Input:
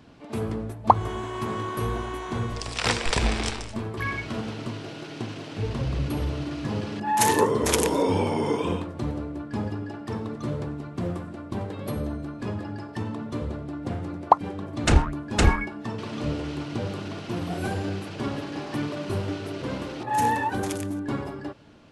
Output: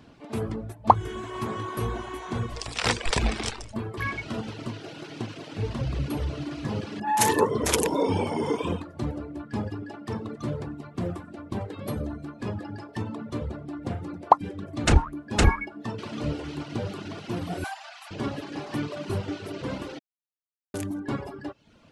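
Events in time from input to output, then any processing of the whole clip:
17.64–18.11 steep high-pass 650 Hz 96 dB/oct
19.99–20.74 mute
whole clip: reverb removal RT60 0.69 s

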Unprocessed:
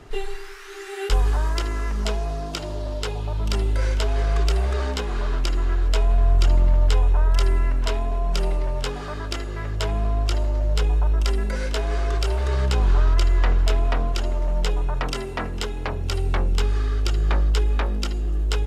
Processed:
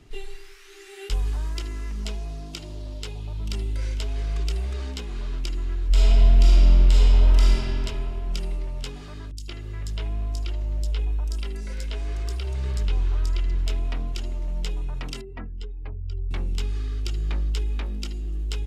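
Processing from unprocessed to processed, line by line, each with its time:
5.87–7.52 reverb throw, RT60 3 s, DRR -8 dB
9.31–13.55 three bands offset in time lows, highs, mids 60/170 ms, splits 210/4600 Hz
15.21–16.31 spectral contrast raised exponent 1.8
whole clip: band shelf 860 Hz -8.5 dB 2.3 oct; gain -5.5 dB

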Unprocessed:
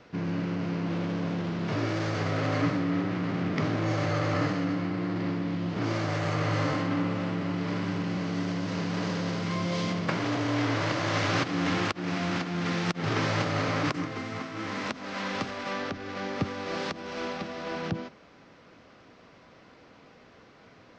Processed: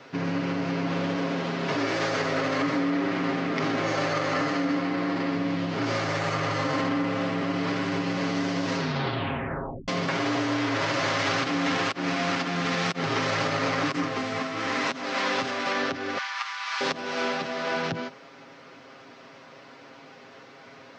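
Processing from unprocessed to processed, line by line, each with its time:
1.16–5.35 HPF 160 Hz
8.76 tape stop 1.12 s
16.18–16.81 elliptic high-pass 940 Hz, stop band 70 dB
whole clip: comb 7.4 ms; limiter -21.5 dBFS; HPF 320 Hz 6 dB/oct; gain +6.5 dB

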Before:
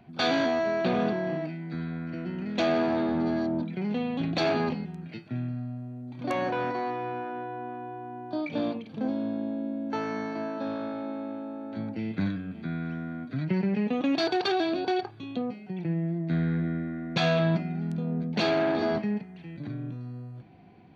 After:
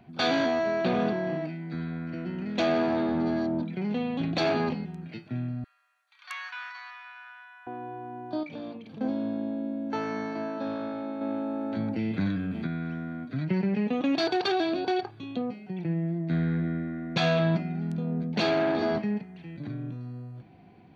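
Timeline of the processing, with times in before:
5.64–7.67 steep high-pass 1200 Hz
8.43–9.01 compressor 2:1, threshold -42 dBFS
11.21–12.67 fast leveller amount 50%

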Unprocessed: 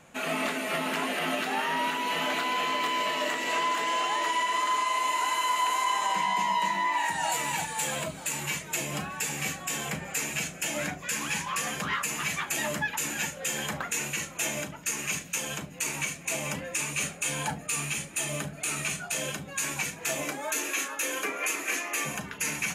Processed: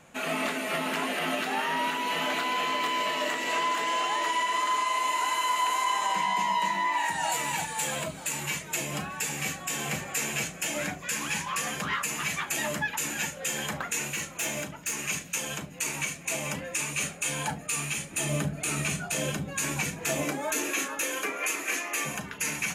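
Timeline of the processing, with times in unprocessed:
9.3–9.97 echo throw 0.48 s, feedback 40%, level -5 dB
14.08–14.98 hard clip -25.5 dBFS
18.11–21.04 low shelf 460 Hz +8.5 dB

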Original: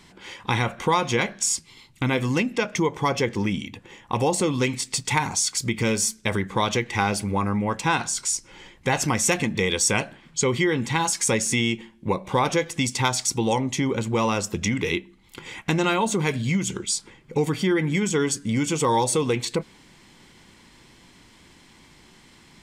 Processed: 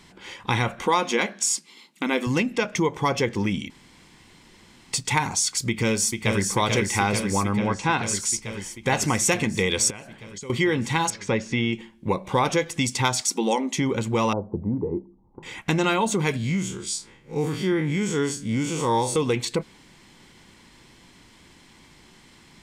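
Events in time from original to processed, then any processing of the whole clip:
0.86–2.27 brick-wall FIR high-pass 170 Hz
3.7–4.93 room tone
5.68–6.44 echo throw 0.44 s, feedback 80%, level -4.5 dB
7.57–8.03 air absorption 110 m
9.9–10.5 compressor 8:1, threshold -35 dBFS
11.1–11.73 air absorption 230 m
13.21–13.78 brick-wall FIR high-pass 180 Hz
14.33–15.43 elliptic low-pass 920 Hz, stop band 80 dB
16.37–19.16 time blur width 81 ms

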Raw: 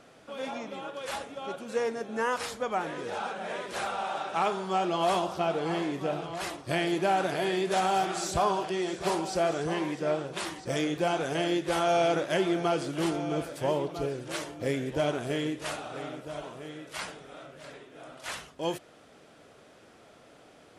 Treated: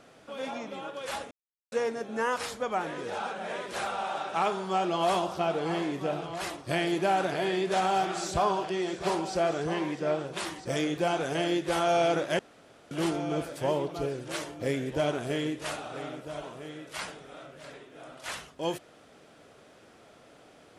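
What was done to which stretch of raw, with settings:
1.31–1.72 mute
7.25–10.2 high shelf 11000 Hz -11 dB
12.39–12.91 room tone

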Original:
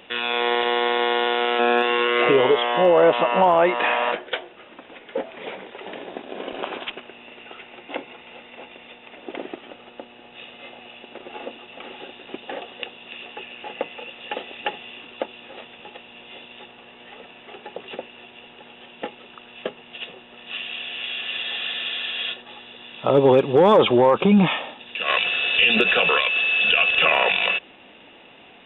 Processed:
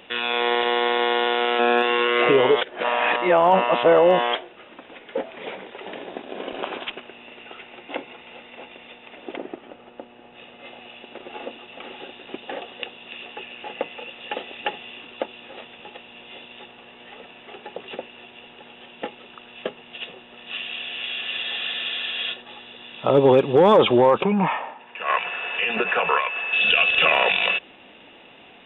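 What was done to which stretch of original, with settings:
2.61–4.35 reverse
9.36–10.64 LPF 1300 Hz -> 1900 Hz 6 dB/oct
24.23–26.53 speaker cabinet 180–2200 Hz, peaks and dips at 220 Hz -6 dB, 320 Hz -7 dB, 530 Hz -3 dB, 950 Hz +8 dB

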